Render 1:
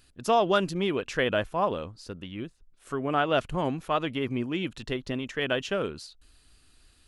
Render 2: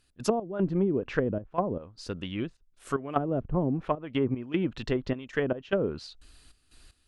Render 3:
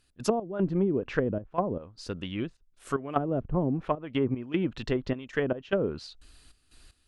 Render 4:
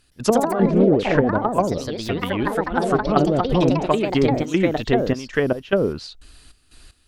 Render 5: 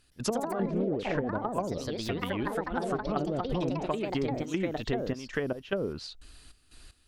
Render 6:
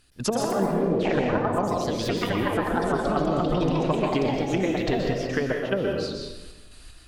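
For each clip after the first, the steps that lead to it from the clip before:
trance gate ".x.xxxx.x.xxx" 76 bpm -12 dB; low-pass that closes with the level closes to 330 Hz, closed at -23 dBFS; trim +4 dB
no audible change
ever faster or slower copies 117 ms, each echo +3 st, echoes 3; trim +8 dB
compression 3:1, threshold -24 dBFS, peak gain reduction 10 dB; trim -5 dB
reverberation RT60 1.1 s, pre-delay 117 ms, DRR 0.5 dB; trim +4.5 dB

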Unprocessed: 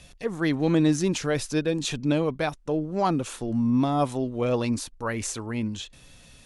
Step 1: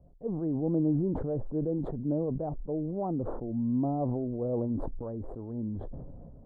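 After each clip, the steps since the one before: inverse Chebyshev low-pass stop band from 2.4 kHz, stop band 60 dB; decay stretcher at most 23 dB/s; trim -6.5 dB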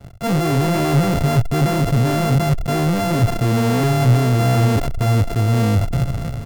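sorted samples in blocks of 64 samples; waveshaping leveller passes 5; peaking EQ 120 Hz +13.5 dB 1.1 oct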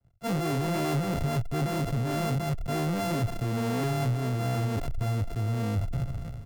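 compression, threshold -16 dBFS, peak gain reduction 7 dB; three bands expanded up and down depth 100%; trim -8 dB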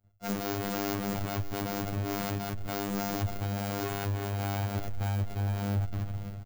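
self-modulated delay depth 0.61 ms; delay 583 ms -15.5 dB; robot voice 100 Hz

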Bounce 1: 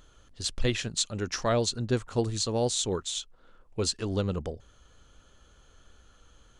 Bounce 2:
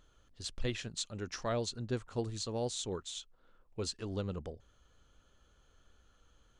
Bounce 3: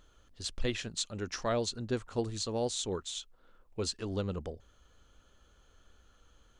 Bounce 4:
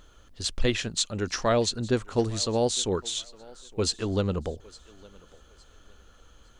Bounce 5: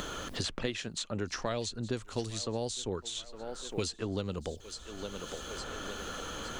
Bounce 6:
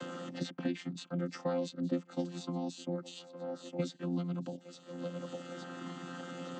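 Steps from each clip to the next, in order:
treble shelf 7.4 kHz -5 dB; trim -8.5 dB
peaking EQ 130 Hz -5 dB 0.44 oct; trim +3.5 dB
thinning echo 860 ms, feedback 31%, high-pass 320 Hz, level -21.5 dB; trim +8 dB
three bands compressed up and down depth 100%; trim -8 dB
vocoder on a held chord bare fifth, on F3

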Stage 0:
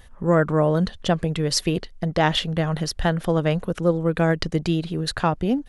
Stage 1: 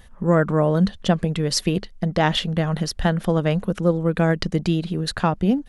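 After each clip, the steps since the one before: peaking EQ 200 Hz +8.5 dB 0.27 oct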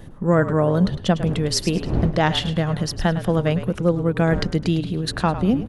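wind noise 210 Hz -32 dBFS; frequency-shifting echo 105 ms, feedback 31%, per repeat -41 Hz, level -12 dB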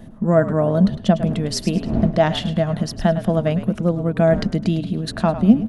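small resonant body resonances 220/650 Hz, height 14 dB, ringing for 75 ms; trim -3 dB

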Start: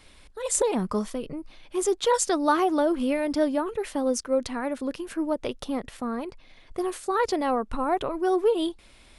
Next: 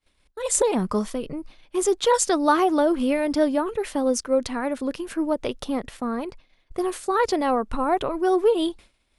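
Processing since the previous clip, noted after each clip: expander -40 dBFS; trim +3 dB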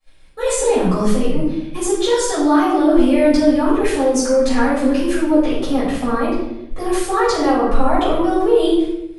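in parallel at -1.5 dB: compressor with a negative ratio -27 dBFS; on the sum: peak limiter -12.5 dBFS, peak gain reduction 9 dB; reverberation RT60 0.85 s, pre-delay 4 ms, DRR -12 dB; trim -10.5 dB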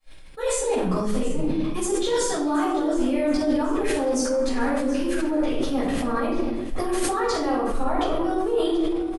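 reverse; compression 4:1, threshold -22 dBFS, peak gain reduction 13 dB; reverse; feedback delay 726 ms, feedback 43%, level -15.5 dB; decay stretcher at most 30 dB/s

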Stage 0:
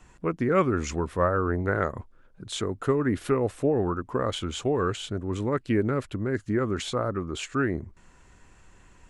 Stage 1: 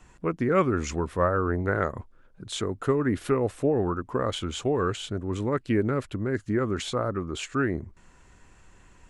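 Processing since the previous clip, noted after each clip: no audible change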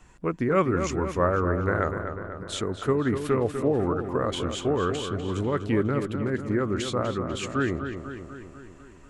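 filtered feedback delay 247 ms, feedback 62%, low-pass 4 kHz, level -8 dB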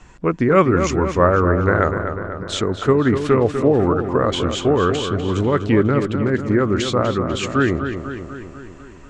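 low-pass 7.3 kHz 24 dB/octave; trim +8.5 dB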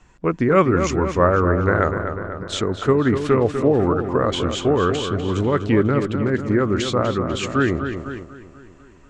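gate -29 dBFS, range -6 dB; trim -1.5 dB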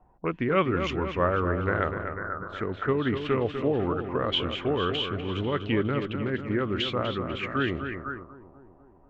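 touch-sensitive low-pass 750–3100 Hz up, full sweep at -17.5 dBFS; trim -9 dB

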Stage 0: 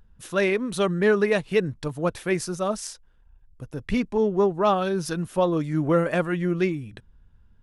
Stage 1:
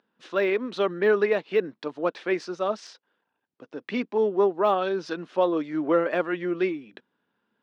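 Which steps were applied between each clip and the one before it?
low-pass 4.6 kHz 24 dB/octave; de-esser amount 100%; high-pass 260 Hz 24 dB/octave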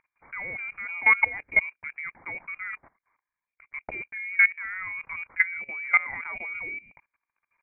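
modulation noise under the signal 30 dB; frequency inversion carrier 2.6 kHz; level held to a coarse grid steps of 19 dB; trim +3.5 dB

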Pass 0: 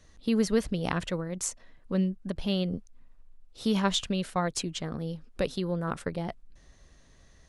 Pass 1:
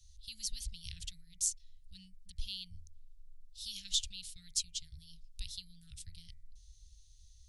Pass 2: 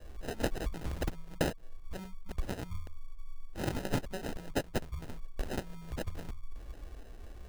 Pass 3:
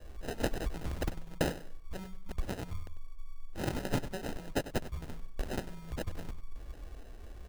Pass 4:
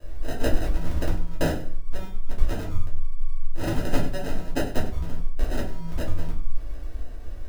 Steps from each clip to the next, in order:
inverse Chebyshev band-stop 290–1100 Hz, stop band 70 dB; de-hum 80.47 Hz, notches 30
compression 6:1, threshold -41 dBFS, peak gain reduction 13.5 dB; sample-and-hold 39×; trim +12 dB
feedback delay 97 ms, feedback 30%, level -14 dB
simulated room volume 170 m³, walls furnished, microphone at 2.8 m

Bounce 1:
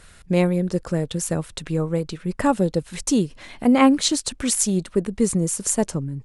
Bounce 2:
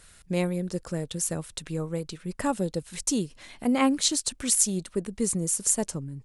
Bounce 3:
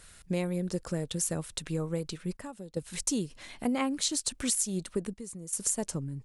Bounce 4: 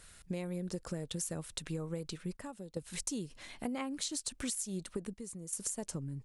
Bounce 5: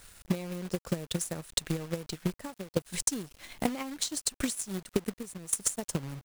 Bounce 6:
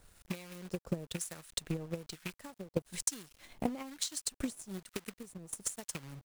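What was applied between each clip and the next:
treble shelf 4.1 kHz +9 dB; trim -8 dB
compression 6:1, threshold -26 dBFS, peak gain reduction 9.5 dB; trance gate "xxxxxxxxxxxx.." 76 bpm -12 dB
compression, threshold -31 dBFS, peak gain reduction 7 dB; trim -3 dB
transient shaper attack +11 dB, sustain -4 dB; companded quantiser 4-bit
rattle on loud lows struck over -32 dBFS, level -26 dBFS; harmonic tremolo 1.1 Hz, depth 70%, crossover 1 kHz; trim -3.5 dB

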